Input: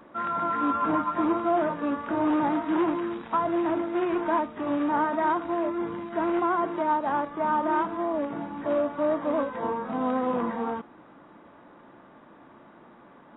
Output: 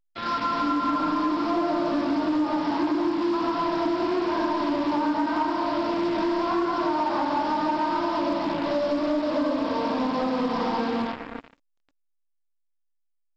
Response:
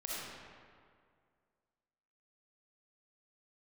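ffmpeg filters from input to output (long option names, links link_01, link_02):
-filter_complex "[1:a]atrim=start_sample=2205,asetrate=37044,aresample=44100[link_01];[0:a][link_01]afir=irnorm=-1:irlink=0,adynamicequalizer=threshold=0.0112:dfrequency=920:dqfactor=3.7:tfrequency=920:tqfactor=3.7:attack=5:release=100:ratio=0.375:range=1.5:mode=boostabove:tftype=bell,aresample=11025,acrusher=bits=4:mix=0:aa=0.5,aresample=44100,equalizer=frequency=280:width=4.6:gain=8,acompressor=threshold=-23dB:ratio=4,asoftclip=type=tanh:threshold=-18dB,volume=2dB" -ar 16000 -c:a pcm_alaw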